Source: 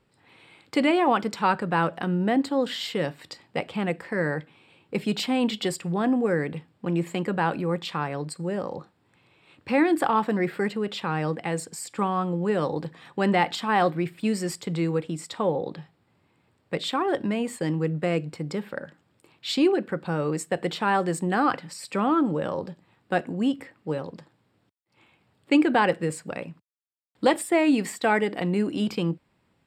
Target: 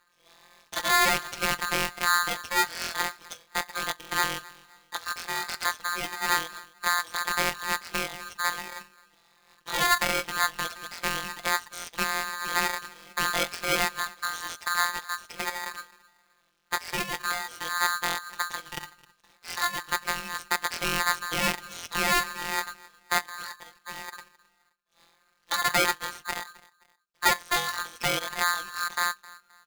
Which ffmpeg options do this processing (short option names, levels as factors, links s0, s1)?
-filter_complex "[0:a]asubboost=boost=8.5:cutoff=51,asplit=2[s0][s1];[s1]acompressor=threshold=0.02:ratio=6,volume=0.794[s2];[s0][s2]amix=inputs=2:normalize=0,afftfilt=real='hypot(re,im)*cos(PI*b)':imag='0':win_size=1024:overlap=0.75,acrossover=split=1200[s3][s4];[s3]aeval=exprs='val(0)*(1-0.7/2+0.7/2*cos(2*PI*1.9*n/s))':c=same[s5];[s4]aeval=exprs='val(0)*(1-0.7/2-0.7/2*cos(2*PI*1.9*n/s))':c=same[s6];[s5][s6]amix=inputs=2:normalize=0,aeval=exprs='0.251*(cos(1*acos(clip(val(0)/0.251,-1,1)))-cos(1*PI/2))+0.0447*(cos(6*acos(clip(val(0)/0.251,-1,1)))-cos(6*PI/2))':c=same,asplit=2[s7][s8];[s8]adelay=262,lowpass=f=4900:p=1,volume=0.0841,asplit=2[s9][s10];[s10]adelay=262,lowpass=f=4900:p=1,volume=0.34[s11];[s9][s11]amix=inputs=2:normalize=0[s12];[s7][s12]amix=inputs=2:normalize=0,aresample=16000,aresample=44100,aeval=exprs='val(0)*sgn(sin(2*PI*1400*n/s))':c=same"